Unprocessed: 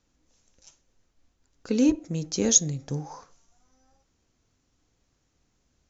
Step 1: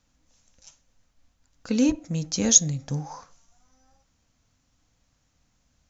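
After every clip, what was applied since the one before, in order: peaking EQ 380 Hz -14.5 dB 0.4 oct; trim +3 dB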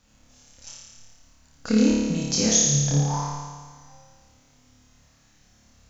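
compression 4:1, threshold -29 dBFS, peak gain reduction 16 dB; on a send: flutter echo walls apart 4.8 m, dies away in 1.5 s; on the sum: trim +5.5 dB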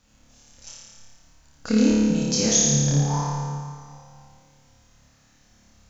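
reverberation RT60 2.1 s, pre-delay 98 ms, DRR 7.5 dB

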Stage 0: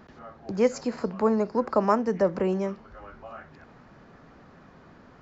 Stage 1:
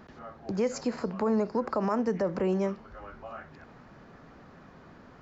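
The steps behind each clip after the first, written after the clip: peak limiter -19 dBFS, peak gain reduction 10 dB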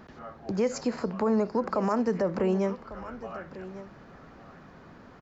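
delay 1148 ms -15.5 dB; trim +1.5 dB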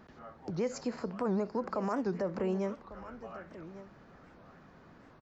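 warped record 78 rpm, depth 250 cents; trim -6.5 dB

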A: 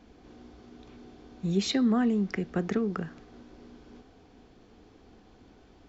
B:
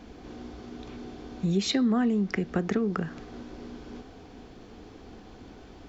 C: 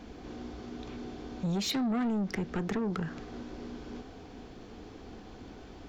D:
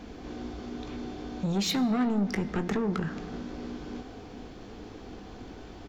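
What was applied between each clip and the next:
compression 2:1, threshold -37 dBFS, peak gain reduction 9 dB; trim +8.5 dB
saturation -27 dBFS, distortion -10 dB
doubling 20 ms -12 dB; on a send at -14.5 dB: reverberation RT60 2.3 s, pre-delay 28 ms; on the sum: trim +3 dB

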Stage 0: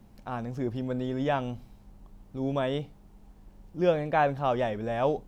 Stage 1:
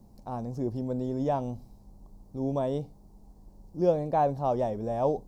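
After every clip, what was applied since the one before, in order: high-order bell 2.1 kHz -15 dB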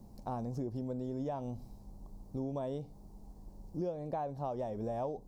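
compression 10:1, threshold -35 dBFS, peak gain reduction 17 dB; trim +1 dB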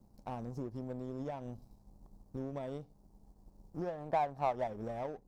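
time-frequency box 3.75–4.67 s, 610–1900 Hz +7 dB; power-law waveshaper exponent 1.4; trim +1.5 dB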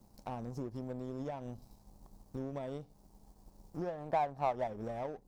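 tape noise reduction on one side only encoder only

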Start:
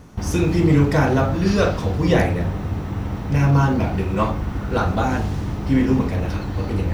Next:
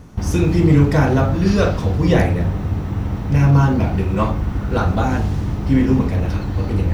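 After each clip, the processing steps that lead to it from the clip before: bass shelf 220 Hz +5 dB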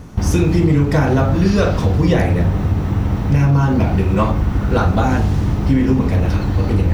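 compression, threshold -15 dBFS, peak gain reduction 7.5 dB; trim +5 dB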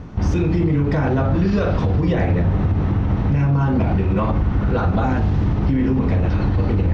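distance through air 180 m; peak limiter -11.5 dBFS, peak gain reduction 9 dB; trim +1 dB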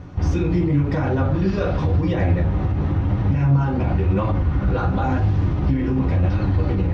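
flange 0.94 Hz, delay 8.8 ms, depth 8.9 ms, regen +47%; comb of notches 220 Hz; trim +3 dB

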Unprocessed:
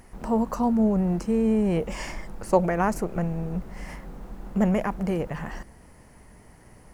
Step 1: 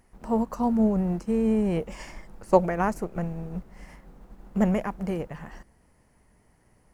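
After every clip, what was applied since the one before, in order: upward expansion 1.5:1, over -41 dBFS; trim +2 dB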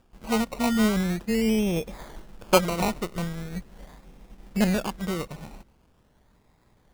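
decimation with a swept rate 21×, swing 60% 0.42 Hz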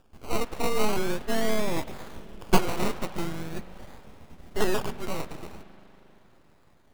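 spring tank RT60 3.9 s, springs 39 ms, chirp 20 ms, DRR 16.5 dB; full-wave rectifier; trim +1.5 dB

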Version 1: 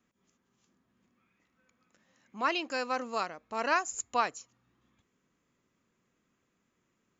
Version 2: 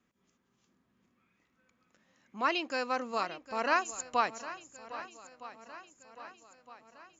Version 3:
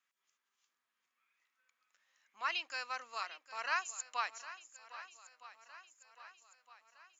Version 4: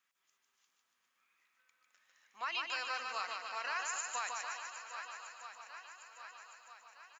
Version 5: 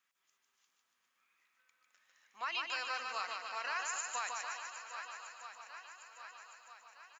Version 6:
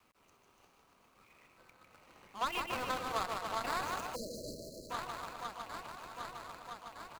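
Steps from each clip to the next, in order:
low-pass 6.8 kHz 12 dB/octave; shuffle delay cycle 1262 ms, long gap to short 1.5:1, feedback 48%, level -15 dB
high-pass 1.3 kHz 12 dB/octave; trim -3 dB
peak limiter -31.5 dBFS, peak gain reduction 10.5 dB; on a send: bouncing-ball echo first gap 150 ms, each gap 0.9×, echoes 5; on the sum: trim +3 dB
no audible change
median filter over 25 samples; spectral selection erased 4.15–4.91 s, 650–4000 Hz; three bands compressed up and down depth 40%; trim +10.5 dB

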